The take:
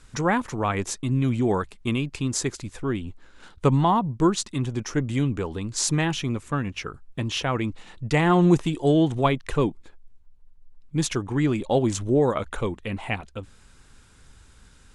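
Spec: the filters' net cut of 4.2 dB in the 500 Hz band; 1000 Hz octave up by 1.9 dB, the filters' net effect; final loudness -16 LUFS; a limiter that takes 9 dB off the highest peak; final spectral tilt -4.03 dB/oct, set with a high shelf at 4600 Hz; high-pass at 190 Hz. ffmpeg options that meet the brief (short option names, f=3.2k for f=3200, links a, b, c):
-af "highpass=190,equalizer=f=500:t=o:g=-6.5,equalizer=f=1k:t=o:g=4,highshelf=f=4.6k:g=5.5,volume=12dB,alimiter=limit=-2.5dB:level=0:latency=1"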